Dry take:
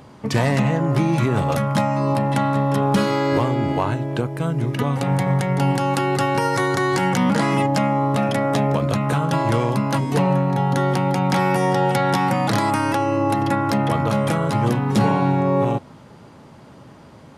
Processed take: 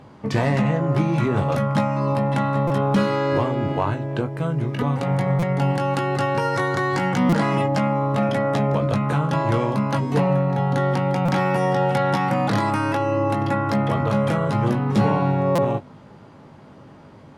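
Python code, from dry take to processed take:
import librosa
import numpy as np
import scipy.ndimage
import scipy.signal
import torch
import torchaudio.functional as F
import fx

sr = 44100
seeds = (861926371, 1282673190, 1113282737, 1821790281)

y = fx.lowpass(x, sr, hz=3200.0, slope=6)
y = fx.doubler(y, sr, ms=20.0, db=-8.0)
y = fx.buffer_glitch(y, sr, at_s=(2.67, 5.39, 7.29, 11.25, 15.55), block=256, repeats=5)
y = y * librosa.db_to_amplitude(-1.5)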